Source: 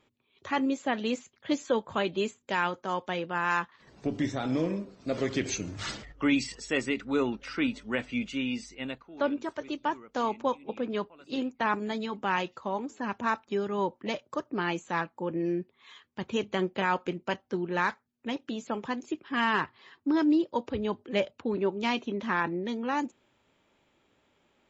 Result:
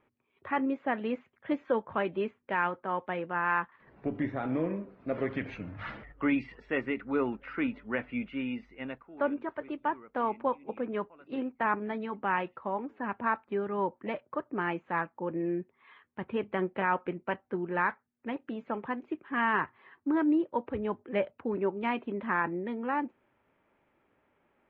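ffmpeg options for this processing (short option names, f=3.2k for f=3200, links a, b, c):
-filter_complex "[0:a]asettb=1/sr,asplit=3[a][b][c];[a]atrim=end=5.334[d];[b]atrim=start=5.33:end=5.96,asetpts=PTS-STARTPTS,afade=t=in:d=0.004:c=qsin,afade=t=out:st=0.626:d=0.004:c=qsin,equalizer=f=370:w=5.1:g=-13.5[e];[c]atrim=start=5.956[f];[d][e]acrossfade=d=0.004:c1=hsin:c2=qsin[g];[g][f]acrossfade=d=0.004:c1=qsin:c2=hsin,lowpass=f=2.2k:w=0.5412,lowpass=f=2.2k:w=1.3066,lowshelf=f=400:g=-3.5"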